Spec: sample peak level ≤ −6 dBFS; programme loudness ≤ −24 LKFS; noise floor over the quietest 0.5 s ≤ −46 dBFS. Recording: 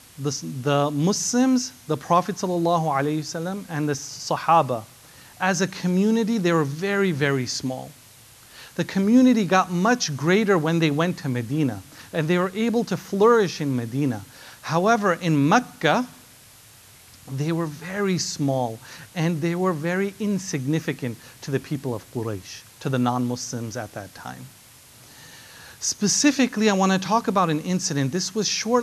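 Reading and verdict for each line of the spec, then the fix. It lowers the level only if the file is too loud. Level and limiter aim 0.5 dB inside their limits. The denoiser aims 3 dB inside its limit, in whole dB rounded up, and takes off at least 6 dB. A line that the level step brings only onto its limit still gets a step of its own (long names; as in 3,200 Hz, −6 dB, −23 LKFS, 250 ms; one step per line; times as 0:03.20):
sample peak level −4.5 dBFS: out of spec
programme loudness −23.0 LKFS: out of spec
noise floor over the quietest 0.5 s −49 dBFS: in spec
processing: level −1.5 dB
brickwall limiter −6.5 dBFS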